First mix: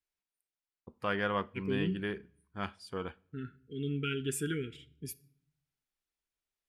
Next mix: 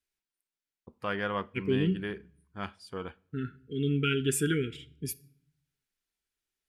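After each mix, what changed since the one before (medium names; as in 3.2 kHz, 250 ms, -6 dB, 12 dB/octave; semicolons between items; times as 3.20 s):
second voice +6.5 dB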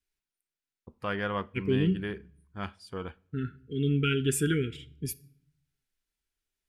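master: add bass shelf 86 Hz +10 dB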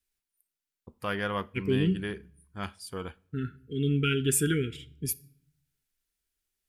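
first voice: add treble shelf 7.7 kHz +12 dB; master: add treble shelf 7.6 kHz +9 dB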